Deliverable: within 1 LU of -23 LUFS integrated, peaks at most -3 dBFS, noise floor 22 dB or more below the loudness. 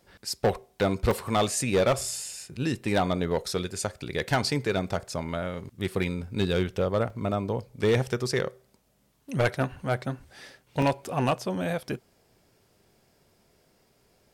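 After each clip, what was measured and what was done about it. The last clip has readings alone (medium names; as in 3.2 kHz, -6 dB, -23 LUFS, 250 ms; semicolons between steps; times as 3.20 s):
clipped samples 0.7%; clipping level -17.0 dBFS; dropouts 3; longest dropout 3.2 ms; loudness -28.5 LUFS; peak level -17.0 dBFS; loudness target -23.0 LUFS
-> clip repair -17 dBFS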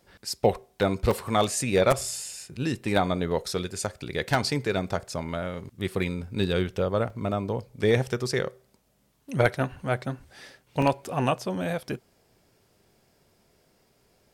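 clipped samples 0.0%; dropouts 3; longest dropout 3.2 ms
-> interpolate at 1.11/7.10/10.82 s, 3.2 ms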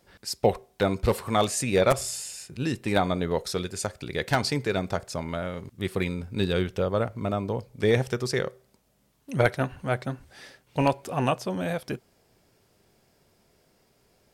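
dropouts 0; loudness -27.5 LUFS; peak level -8.0 dBFS; loudness target -23.0 LUFS
-> trim +4.5 dB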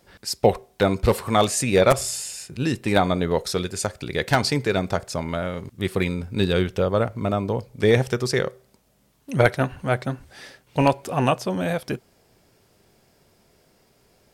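loudness -23.0 LUFS; peak level -3.5 dBFS; noise floor -62 dBFS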